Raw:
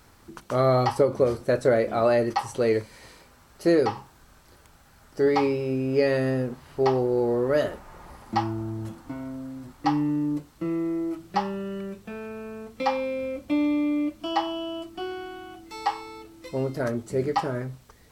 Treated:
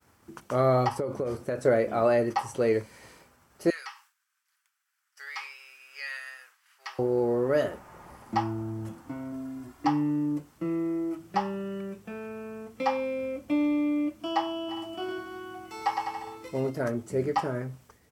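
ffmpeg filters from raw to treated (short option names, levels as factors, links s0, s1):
-filter_complex "[0:a]asettb=1/sr,asplit=3[s0][s1][s2];[s0]atrim=end=0.884[s3];[s1]atrim=start=0.88:end=1.65,asetpts=PTS-STARTPTS,afade=t=in:d=0.004:c=qsin,afade=t=out:st=0.766:d=0.004:c=qsin,acompressor=threshold=0.0708:ratio=12:attack=3.2:release=140:knee=1:detection=peak[s4];[s2]atrim=start=1.646[s5];[s3][s4]acrossfade=d=0.004:c1=hsin:c2=qsin[s6];[s6][s5]acrossfade=d=0.004:c1=qsin:c2=hsin,asettb=1/sr,asplit=3[s7][s8][s9];[s7]atrim=end=3.704[s10];[s8]atrim=start=3.7:end=6.99,asetpts=PTS-STARTPTS,afade=t=in:d=0.004:c=qsin,afade=t=out:st=3.286:d=0.004:c=qsin,highpass=f=1400:w=0.5412,highpass=f=1400:w=1.3066[s11];[s9]atrim=start=6.986[s12];[s10][s11]acrossfade=d=0.004:c1=hsin:c2=qsin[s13];[s13][s12]acrossfade=d=0.004:c1=qsin:c2=hsin,asettb=1/sr,asplit=3[s14][s15][s16];[s14]atrim=end=9.324[s17];[s15]atrim=start=9.32:end=9.87,asetpts=PTS-STARTPTS,afade=t=in:d=0.004:c=qsin,afade=t=out:st=0.546:d=0.004:c=qsin,aecho=1:1:2.9:0.65,atrim=end_sample=24255[s18];[s16]atrim=start=9.866[s19];[s17][s18]acrossfade=d=0.004:c1=hsin:c2=qsin[s20];[s20][s19]acrossfade=d=0.004:c1=qsin:c2=hsin,asplit=3[s21][s22][s23];[s21]afade=t=out:st=14.68:d=0.02[s24];[s22]aecho=1:1:110|203.5|283|350.5|407.9|456.8:0.631|0.398|0.251|0.158|0.1|0.0631,afade=t=in:st=14.68:d=0.02,afade=t=out:st=16.69:d=0.02[s25];[s23]afade=t=in:st=16.69:d=0.02[s26];[s24][s25][s26]amix=inputs=3:normalize=0,agate=range=0.0224:threshold=0.00316:ratio=3:detection=peak,highpass=75,equalizer=f=4000:t=o:w=0.44:g=-6.5,volume=0.794"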